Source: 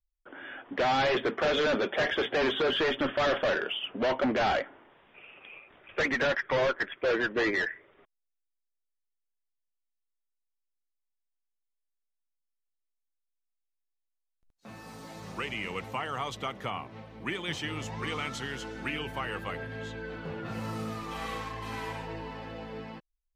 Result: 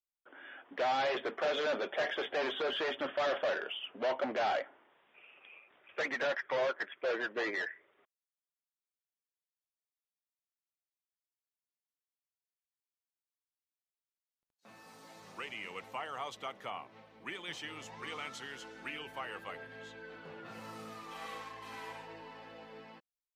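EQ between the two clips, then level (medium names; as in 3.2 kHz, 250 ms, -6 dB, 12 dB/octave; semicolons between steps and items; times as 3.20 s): high-pass 450 Hz 6 dB/octave; dynamic bell 650 Hz, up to +5 dB, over -41 dBFS, Q 1.5; -7.0 dB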